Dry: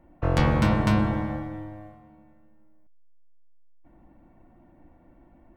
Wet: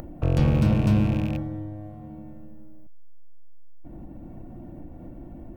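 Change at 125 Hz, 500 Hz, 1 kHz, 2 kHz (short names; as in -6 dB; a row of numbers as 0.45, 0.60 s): +3.5, -2.0, -8.0, -7.5 dB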